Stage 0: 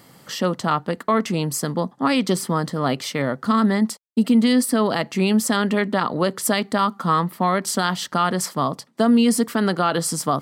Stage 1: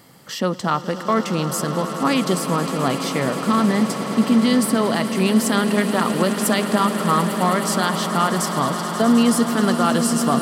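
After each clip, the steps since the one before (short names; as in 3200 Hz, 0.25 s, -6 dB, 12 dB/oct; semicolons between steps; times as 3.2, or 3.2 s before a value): swelling echo 0.106 s, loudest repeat 8, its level -14.5 dB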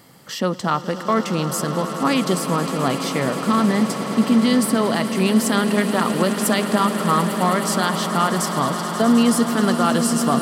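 nothing audible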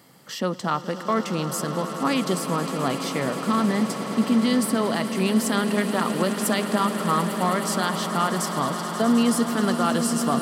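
HPF 110 Hz; gain -4 dB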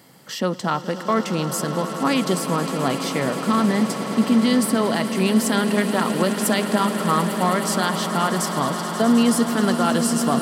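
notch 1200 Hz, Q 18; gain +3 dB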